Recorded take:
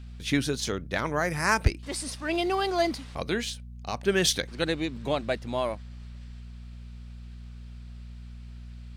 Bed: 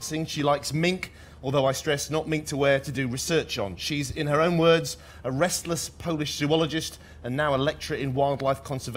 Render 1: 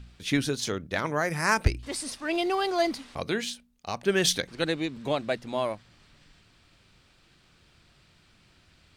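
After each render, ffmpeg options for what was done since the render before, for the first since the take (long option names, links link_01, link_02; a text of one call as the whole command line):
ffmpeg -i in.wav -af "bandreject=frequency=60:width_type=h:width=4,bandreject=frequency=120:width_type=h:width=4,bandreject=frequency=180:width_type=h:width=4,bandreject=frequency=240:width_type=h:width=4" out.wav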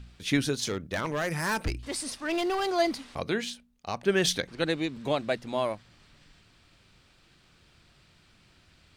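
ffmpeg -i in.wav -filter_complex "[0:a]asettb=1/sr,asplit=3[link_01][link_02][link_03];[link_01]atrim=end=0.664[link_04];[link_02]atrim=start=0.66:end=2.69,asetpts=PTS-STARTPTS,afade=type=in:duration=0.004:curve=qsin,afade=type=out:start_time=2.026:duration=0.004:curve=qsin,volume=24.5dB,asoftclip=hard,volume=-24.5dB[link_05];[link_03]atrim=start=2.686[link_06];[link_04][link_05]acrossfade=duration=0.004:curve1=hsin:curve2=qsin[link_07];[link_07][link_06]acrossfade=duration=0.004:curve1=qsin:curve2=hsin,asettb=1/sr,asplit=3[link_08][link_09][link_10];[link_08]atrim=end=3.194[link_11];[link_09]atrim=start=3.19:end=4.7,asetpts=PTS-STARTPTS,afade=type=in:duration=0.004:curve=qsin,afade=type=out:start_time=1.506:duration=0.004:curve=qsin,highshelf=frequency=4300:gain=-5[link_12];[link_10]atrim=start=4.696[link_13];[link_11][link_12]acrossfade=duration=0.004:curve1=hsin:curve2=qsin[link_14];[link_14][link_13]acrossfade=duration=0.004:curve1=qsin:curve2=hsin" out.wav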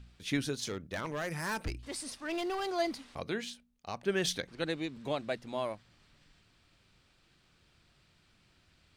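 ffmpeg -i in.wav -af "volume=-6.5dB" out.wav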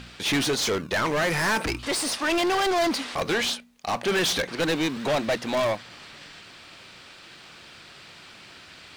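ffmpeg -i in.wav -filter_complex "[0:a]asplit=2[link_01][link_02];[link_02]acrusher=samples=28:mix=1:aa=0.000001:lfo=1:lforange=16.8:lforate=1.3,volume=-12dB[link_03];[link_01][link_03]amix=inputs=2:normalize=0,asplit=2[link_04][link_05];[link_05]highpass=frequency=720:poles=1,volume=30dB,asoftclip=type=tanh:threshold=-16dB[link_06];[link_04][link_06]amix=inputs=2:normalize=0,lowpass=frequency=5700:poles=1,volume=-6dB" out.wav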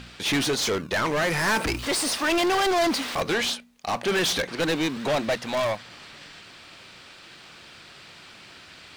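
ffmpeg -i in.wav -filter_complex "[0:a]asettb=1/sr,asplit=3[link_01][link_02][link_03];[link_01]atrim=end=1.474[link_04];[link_02]atrim=start=1.47:end=3.22,asetpts=PTS-STARTPTS,afade=type=in:duration=0.004:curve=qsin,afade=type=out:start_time=1.746:duration=0.004:curve=qsin,aeval=exprs='val(0)+0.5*0.0188*sgn(val(0))':channel_layout=same[link_05];[link_03]atrim=start=3.216[link_06];[link_04][link_05]acrossfade=duration=0.004:curve1=hsin:curve2=qsin[link_07];[link_07][link_06]acrossfade=duration=0.004:curve1=qsin:curve2=hsin,asettb=1/sr,asplit=3[link_08][link_09][link_10];[link_08]atrim=end=5.344[link_11];[link_09]atrim=start=5.34:end=5.8,asetpts=PTS-STARTPTS,afade=type=in:duration=0.004:curve=qsin,afade=type=out:start_time=0.456:duration=0.004:curve=qsin,equalizer=frequency=320:width=1.7:gain=-7[link_12];[link_10]atrim=start=5.796[link_13];[link_11][link_12]acrossfade=duration=0.004:curve1=hsin:curve2=qsin[link_14];[link_14][link_13]acrossfade=duration=0.004:curve1=qsin:curve2=hsin" out.wav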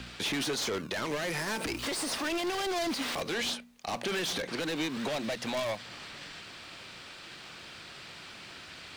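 ffmpeg -i in.wav -filter_complex "[0:a]acrossover=split=170|690|2100[link_01][link_02][link_03][link_04];[link_01]acompressor=threshold=-46dB:ratio=4[link_05];[link_02]acompressor=threshold=-31dB:ratio=4[link_06];[link_03]acompressor=threshold=-38dB:ratio=4[link_07];[link_04]acompressor=threshold=-32dB:ratio=4[link_08];[link_05][link_06][link_07][link_08]amix=inputs=4:normalize=0,alimiter=limit=-23.5dB:level=0:latency=1:release=72" out.wav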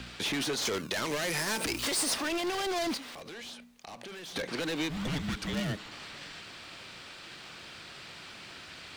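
ffmpeg -i in.wav -filter_complex "[0:a]asettb=1/sr,asplit=3[link_01][link_02][link_03];[link_01]atrim=end=0.654[link_04];[link_02]atrim=start=0.65:end=2.14,asetpts=PTS-STARTPTS,afade=type=in:duration=0.004:curve=qsin,afade=type=out:start_time=1.486:duration=0.004:curve=qsin,highshelf=frequency=3900:gain=7.5[link_05];[link_03]atrim=start=2.136[link_06];[link_04][link_05]acrossfade=duration=0.004:curve1=hsin:curve2=qsin[link_07];[link_07][link_06]acrossfade=duration=0.004:curve1=qsin:curve2=hsin,asettb=1/sr,asplit=3[link_08][link_09][link_10];[link_08]atrim=end=2.974[link_11];[link_09]atrim=start=2.97:end=4.36,asetpts=PTS-STARTPTS,afade=type=in:duration=0.004:curve=qsin,afade=type=out:start_time=1.386:duration=0.004:curve=qsin,acompressor=threshold=-43dB:ratio=4:attack=3.2:release=140:knee=1:detection=peak[link_12];[link_10]atrim=start=4.356[link_13];[link_11][link_12]acrossfade=duration=0.004:curve1=hsin:curve2=qsin[link_14];[link_14][link_13]acrossfade=duration=0.004:curve1=qsin:curve2=hsin,asplit=3[link_15][link_16][link_17];[link_15]afade=type=out:start_time=4.89:duration=0.02[link_18];[link_16]afreqshift=-430,afade=type=in:start_time=4.89:duration=0.02,afade=type=out:start_time=5.9:duration=0.02[link_19];[link_17]afade=type=in:start_time=5.9:duration=0.02[link_20];[link_18][link_19][link_20]amix=inputs=3:normalize=0" out.wav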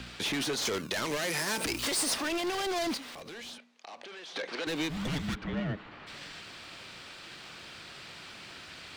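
ffmpeg -i in.wav -filter_complex "[0:a]asettb=1/sr,asplit=3[link_01][link_02][link_03];[link_01]atrim=end=1.174[link_04];[link_02]atrim=start=1.17:end=1.58,asetpts=PTS-STARTPTS,afade=type=in:duration=0.004:curve=qsin,afade=type=out:start_time=0.406:duration=0.004:curve=qsin,highpass=140[link_05];[link_03]atrim=start=1.576[link_06];[link_04][link_05]acrossfade=duration=0.004:curve1=hsin:curve2=qsin[link_07];[link_07][link_06]acrossfade=duration=0.004:curve1=qsin:curve2=hsin,asettb=1/sr,asplit=3[link_08][link_09][link_10];[link_08]atrim=end=3.584[link_11];[link_09]atrim=start=3.58:end=4.67,asetpts=PTS-STARTPTS,afade=type=in:duration=0.004:curve=qsin,afade=type=out:start_time=1.086:duration=0.004:curve=qsin,highpass=380,lowpass=5300[link_12];[link_10]atrim=start=4.666[link_13];[link_11][link_12]acrossfade=duration=0.004:curve1=hsin:curve2=qsin[link_14];[link_14][link_13]acrossfade=duration=0.004:curve1=qsin:curve2=hsin,asplit=3[link_15][link_16][link_17];[link_15]afade=type=out:start_time=5.34:duration=0.02[link_18];[link_16]lowpass=2000,afade=type=in:start_time=5.34:duration=0.02,afade=type=out:start_time=6.06:duration=0.02[link_19];[link_17]afade=type=in:start_time=6.06:duration=0.02[link_20];[link_18][link_19][link_20]amix=inputs=3:normalize=0" out.wav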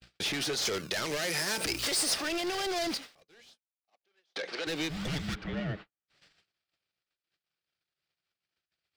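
ffmpeg -i in.wav -af "agate=range=-55dB:threshold=-41dB:ratio=16:detection=peak,equalizer=frequency=250:width_type=o:width=0.33:gain=-9,equalizer=frequency=1000:width_type=o:width=0.33:gain=-6,equalizer=frequency=5000:width_type=o:width=0.33:gain=4" out.wav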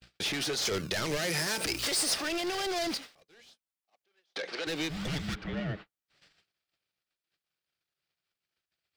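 ffmpeg -i in.wav -filter_complex "[0:a]asettb=1/sr,asplit=3[link_01][link_02][link_03];[link_01]atrim=end=0.714[link_04];[link_02]atrim=start=0.71:end=1.47,asetpts=PTS-STARTPTS,afade=type=in:duration=0.004:curve=qsin,afade=type=out:start_time=0.756:duration=0.004:curve=qsin,lowshelf=frequency=190:gain=10[link_05];[link_03]atrim=start=1.466[link_06];[link_04][link_05]acrossfade=duration=0.004:curve1=hsin:curve2=qsin[link_07];[link_07][link_06]acrossfade=duration=0.004:curve1=qsin:curve2=hsin" out.wav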